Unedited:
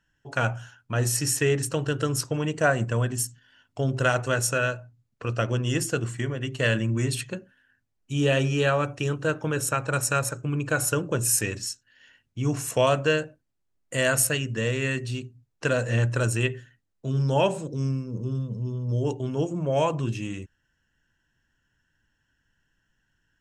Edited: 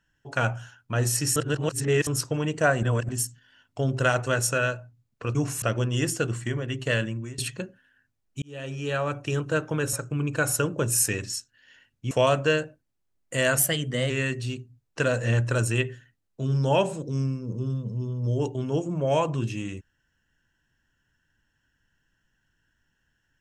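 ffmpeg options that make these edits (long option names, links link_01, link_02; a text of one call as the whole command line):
ffmpeg -i in.wav -filter_complex "[0:a]asplit=13[link_01][link_02][link_03][link_04][link_05][link_06][link_07][link_08][link_09][link_10][link_11][link_12][link_13];[link_01]atrim=end=1.362[link_14];[link_02]atrim=start=1.358:end=2.072,asetpts=PTS-STARTPTS,areverse[link_15];[link_03]atrim=start=2.068:end=2.832[link_16];[link_04]atrim=start=2.828:end=3.092,asetpts=PTS-STARTPTS,areverse[link_17];[link_05]atrim=start=3.088:end=5.352[link_18];[link_06]atrim=start=12.438:end=12.712[link_19];[link_07]atrim=start=5.348:end=7.11,asetpts=PTS-STARTPTS,afade=type=out:start_time=1.212:duration=0.55:silence=0.112202[link_20];[link_08]atrim=start=7.11:end=8.15,asetpts=PTS-STARTPTS,afade=type=in:duration=0.004:curve=hsin:silence=0.112202,afade=type=out:start_time=1.036:duration=0.004:curve=hsin[link_21];[link_09]atrim=start=8.15:end=9.662,asetpts=PTS-STARTPTS,afade=type=in:duration=0.94[link_22];[link_10]atrim=start=10.258:end=12.442[link_23];[link_11]atrim=start=12.708:end=14.194[link_24];[link_12]atrim=start=14.19:end=14.75,asetpts=PTS-STARTPTS,asetrate=48510,aresample=44100[link_25];[link_13]atrim=start=14.746[link_26];[link_14][link_15]acrossfade=duration=0.004:curve1=hsin:curve2=hsin[link_27];[link_27][link_16]acrossfade=duration=0.004:curve1=hsin:curve2=hsin[link_28];[link_28][link_17]acrossfade=duration=0.004:curve1=hsin:curve2=hsin[link_29];[link_29][link_18]acrossfade=duration=0.004:curve1=hsin:curve2=hsin[link_30];[link_30][link_19]acrossfade=duration=0.004:curve1=hsin:curve2=hsin[link_31];[link_20][link_21][link_22]concat=n=3:v=0:a=1[link_32];[link_31][link_32]acrossfade=duration=0.004:curve1=hsin:curve2=hsin[link_33];[link_33][link_23]acrossfade=duration=0.004:curve1=hsin:curve2=hsin[link_34];[link_34][link_24]acrossfade=duration=0.004:curve1=hsin:curve2=hsin[link_35];[link_35][link_25]acrossfade=duration=0.004:curve1=hsin:curve2=hsin[link_36];[link_36][link_26]acrossfade=duration=0.004:curve1=hsin:curve2=hsin" out.wav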